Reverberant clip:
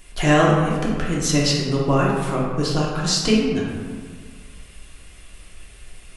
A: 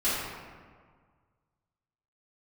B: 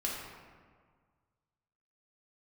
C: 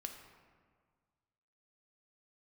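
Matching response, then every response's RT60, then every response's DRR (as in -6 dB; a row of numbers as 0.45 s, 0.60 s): B; 1.7 s, 1.7 s, 1.7 s; -14.0 dB, -4.5 dB, 3.5 dB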